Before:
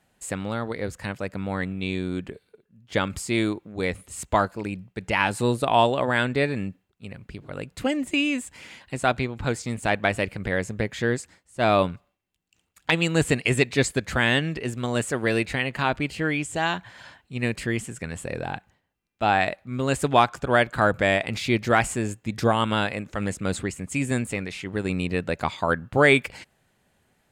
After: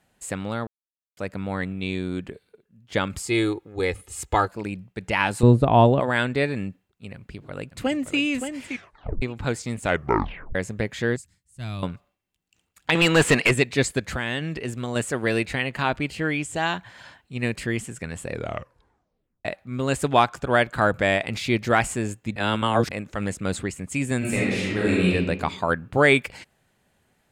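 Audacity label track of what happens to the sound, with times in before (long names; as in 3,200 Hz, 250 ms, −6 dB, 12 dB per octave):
0.670000	1.170000	silence
3.230000	4.480000	comb filter 2.4 ms
5.430000	6.000000	spectral tilt −4 dB per octave
7.140000	8.180000	delay throw 570 ms, feedback 15%, level −7.5 dB
8.680000	8.680000	tape stop 0.54 s
9.820000	9.820000	tape stop 0.73 s
11.160000	11.830000	drawn EQ curve 130 Hz 0 dB, 350 Hz −19 dB, 580 Hz −25 dB, 10,000 Hz −3 dB
12.950000	13.510000	mid-hump overdrive drive 22 dB, tone 2,900 Hz, clips at −7 dBFS
14.070000	14.960000	downward compressor, threshold −23 dBFS
18.310000	18.310000	tape stop 1.14 s
22.360000	22.910000	reverse
24.180000	25.120000	thrown reverb, RT60 1.2 s, DRR −6.5 dB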